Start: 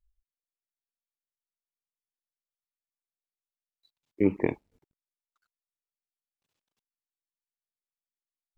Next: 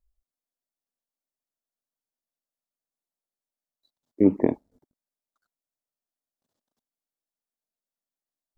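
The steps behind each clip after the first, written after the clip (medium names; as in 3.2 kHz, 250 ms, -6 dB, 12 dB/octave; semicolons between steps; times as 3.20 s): fifteen-band graphic EQ 250 Hz +9 dB, 630 Hz +8 dB, 2.5 kHz -12 dB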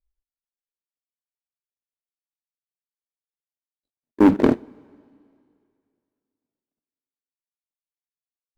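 median filter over 41 samples; waveshaping leveller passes 3; two-slope reverb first 0.29 s, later 2.4 s, from -18 dB, DRR 16.5 dB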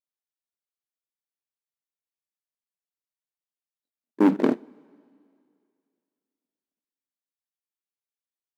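brick-wall FIR high-pass 150 Hz; trim -4.5 dB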